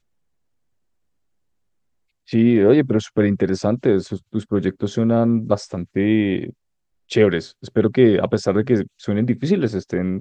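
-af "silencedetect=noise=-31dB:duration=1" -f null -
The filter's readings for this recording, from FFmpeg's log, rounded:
silence_start: 0.00
silence_end: 2.30 | silence_duration: 2.30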